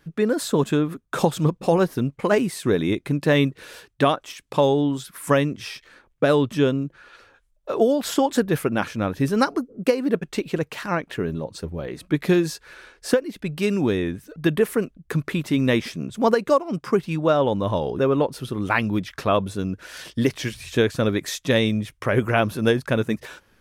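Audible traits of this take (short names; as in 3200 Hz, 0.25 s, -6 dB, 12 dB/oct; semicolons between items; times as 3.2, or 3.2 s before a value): noise floor -62 dBFS; spectral tilt -5.5 dB/oct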